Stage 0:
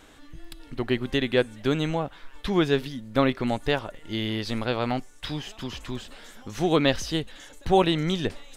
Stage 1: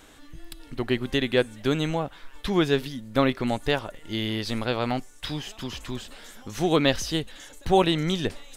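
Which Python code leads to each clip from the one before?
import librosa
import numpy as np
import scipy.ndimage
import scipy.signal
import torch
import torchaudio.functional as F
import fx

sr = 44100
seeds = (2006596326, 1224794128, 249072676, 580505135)

y = fx.high_shelf(x, sr, hz=6500.0, db=6.0)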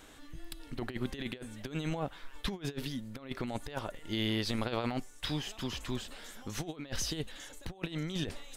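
y = fx.over_compress(x, sr, threshold_db=-28.0, ratio=-0.5)
y = y * 10.0 ** (-7.0 / 20.0)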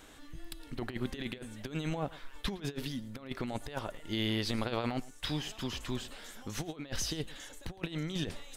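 y = x + 10.0 ** (-20.0 / 20.0) * np.pad(x, (int(111 * sr / 1000.0), 0))[:len(x)]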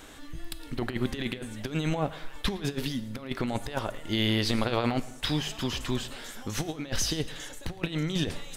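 y = fx.rev_plate(x, sr, seeds[0], rt60_s=1.1, hf_ratio=0.85, predelay_ms=0, drr_db=15.0)
y = y * 10.0 ** (6.5 / 20.0)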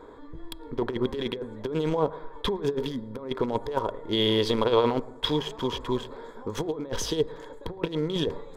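y = fx.wiener(x, sr, points=15)
y = fx.small_body(y, sr, hz=(450.0, 960.0, 3300.0), ring_ms=25, db=16)
y = y * 10.0 ** (-3.5 / 20.0)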